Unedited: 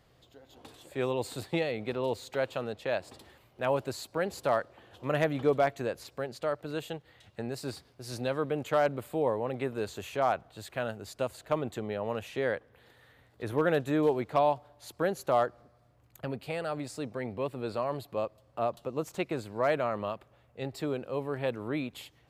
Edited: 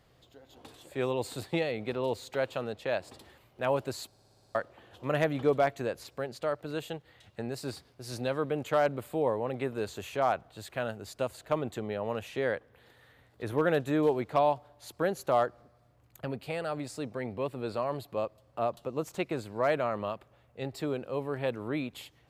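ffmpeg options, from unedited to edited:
-filter_complex "[0:a]asplit=9[a][b][c][d][e][f][g][h][i];[a]atrim=end=4.132[j];[b]atrim=start=4.068:end=4.132[k];[c]atrim=start=4.068:end=4.132[l];[d]atrim=start=4.068:end=4.132[m];[e]atrim=start=4.068:end=4.132[n];[f]atrim=start=4.068:end=4.132[o];[g]atrim=start=4.068:end=4.132[p];[h]atrim=start=4.068:end=4.132[q];[i]atrim=start=4.548[r];[j][k]acrossfade=d=0.004:c1=hsin:c2=hsin[s];[s][l]acrossfade=d=0.004:c1=hsin:c2=hsin[t];[t][m]acrossfade=d=0.004:c1=hsin:c2=hsin[u];[u][n]acrossfade=d=0.004:c1=hsin:c2=hsin[v];[v][o]acrossfade=d=0.004:c1=hsin:c2=hsin[w];[w][p]acrossfade=d=0.004:c1=hsin:c2=hsin[x];[x][q]acrossfade=d=0.004:c1=hsin:c2=hsin[y];[y][r]acrossfade=d=0.004:c1=hsin:c2=hsin"

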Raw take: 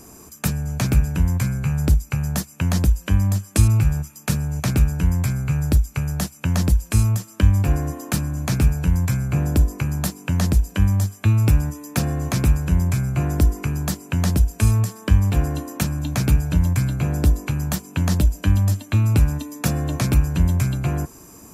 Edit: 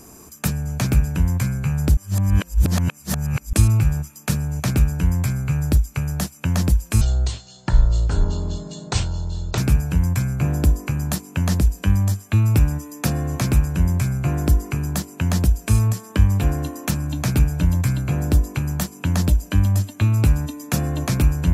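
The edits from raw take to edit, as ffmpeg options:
-filter_complex "[0:a]asplit=5[a][b][c][d][e];[a]atrim=end=1.972[f];[b]atrim=start=1.968:end=3.532,asetpts=PTS-STARTPTS,areverse[g];[c]atrim=start=3.528:end=7.014[h];[d]atrim=start=7.01:end=8.5,asetpts=PTS-STARTPTS,asetrate=25578,aresample=44100,atrim=end_sample=113291,asetpts=PTS-STARTPTS[i];[e]atrim=start=8.496[j];[f][g]acrossfade=d=0.004:c1=hsin:c2=hsin[k];[k][h]acrossfade=d=0.004:c1=hsin:c2=hsin[l];[l][i]acrossfade=d=0.004:c1=hsin:c2=hsin[m];[m][j]acrossfade=d=0.004:c1=hsin:c2=hsin"

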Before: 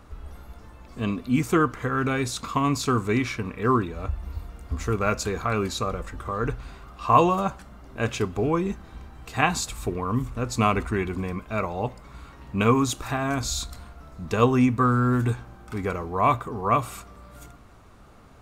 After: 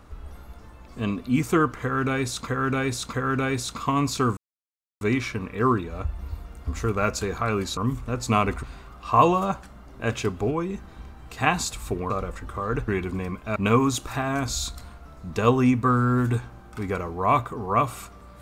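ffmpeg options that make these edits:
-filter_complex "[0:a]asplit=11[a][b][c][d][e][f][g][h][i][j][k];[a]atrim=end=2.472[l];[b]atrim=start=1.808:end=2.472[m];[c]atrim=start=1.808:end=3.05,asetpts=PTS-STARTPTS,afade=t=out:st=1.238:d=0.004:c=hsin,apad=pad_dur=0.64[n];[d]atrim=start=3.05:end=5.812,asetpts=PTS-STARTPTS,afade=t=in:d=0.004:c=hsin[o];[e]atrim=start=10.058:end=10.922[p];[f]atrim=start=6.588:end=8.472[q];[g]atrim=start=8.468:end=8.742,asetpts=PTS-STARTPTS,volume=-3.5dB[r];[h]atrim=start=8.738:end=10.062[s];[i]atrim=start=5.808:end=6.592[t];[j]atrim=start=10.918:end=11.602[u];[k]atrim=start=12.508[v];[l][m]acrossfade=d=0.004:c1=hsin:c2=hsin[w];[n][o]concat=n=2:v=0:a=1[x];[w][x]acrossfade=d=0.004:c1=hsin:c2=hsin[y];[y][p]acrossfade=d=0.004:c1=hsin:c2=hsin[z];[z][q]acrossfade=d=0.004:c1=hsin:c2=hsin[aa];[aa][r]acrossfade=d=0.004:c1=hsin:c2=hsin[ab];[ab][s]acrossfade=d=0.004:c1=hsin:c2=hsin[ac];[ac][t]acrossfade=d=0.004:c1=hsin:c2=hsin[ad];[ad][u]acrossfade=d=0.004:c1=hsin:c2=hsin[ae];[ae][v]acrossfade=d=0.004:c1=hsin:c2=hsin"

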